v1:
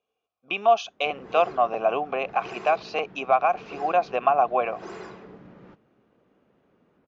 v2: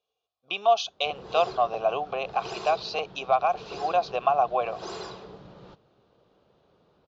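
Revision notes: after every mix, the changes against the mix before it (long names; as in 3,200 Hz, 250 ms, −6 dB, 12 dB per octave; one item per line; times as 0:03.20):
background +5.5 dB
master: add octave-band graphic EQ 250/2,000/4,000 Hz −12/−12/+11 dB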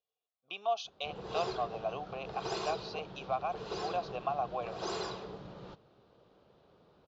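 speech −11.5 dB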